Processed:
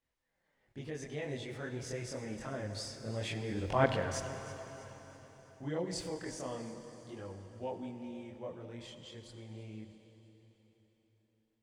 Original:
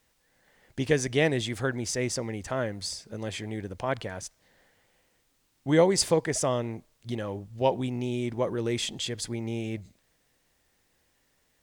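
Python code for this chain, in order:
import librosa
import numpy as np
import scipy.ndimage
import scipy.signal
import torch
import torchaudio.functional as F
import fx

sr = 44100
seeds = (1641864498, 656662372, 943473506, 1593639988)

p1 = fx.doppler_pass(x, sr, speed_mps=9, closest_m=1.8, pass_at_s=3.79)
p2 = fx.high_shelf(p1, sr, hz=4700.0, db=-10.0)
p3 = fx.over_compress(p2, sr, threshold_db=-50.0, ratio=-1.0)
p4 = p2 + (p3 * 10.0 ** (0.0 / 20.0))
p5 = fx.chorus_voices(p4, sr, voices=2, hz=0.26, base_ms=24, depth_ms=4.6, mix_pct=55)
p6 = p5 + fx.echo_alternate(p5, sr, ms=162, hz=1100.0, feedback_pct=68, wet_db=-13.0, dry=0)
p7 = fx.rev_plate(p6, sr, seeds[0], rt60_s=4.3, hf_ratio=0.95, predelay_ms=0, drr_db=8.0)
y = p7 * 10.0 ** (4.5 / 20.0)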